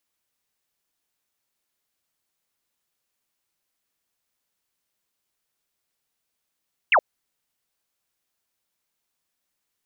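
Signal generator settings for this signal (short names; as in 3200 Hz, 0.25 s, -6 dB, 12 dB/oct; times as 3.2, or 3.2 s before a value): laser zap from 3000 Hz, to 510 Hz, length 0.07 s sine, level -13 dB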